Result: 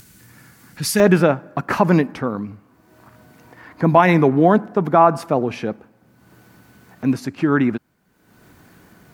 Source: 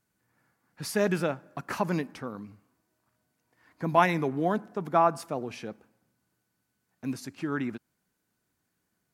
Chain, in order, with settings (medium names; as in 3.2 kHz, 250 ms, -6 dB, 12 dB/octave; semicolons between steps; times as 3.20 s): peaking EQ 750 Hz -11 dB 2.5 oct, from 1.00 s 9.4 kHz; upward compressor, threshold -48 dBFS; loudness maximiser +15.5 dB; trim -1 dB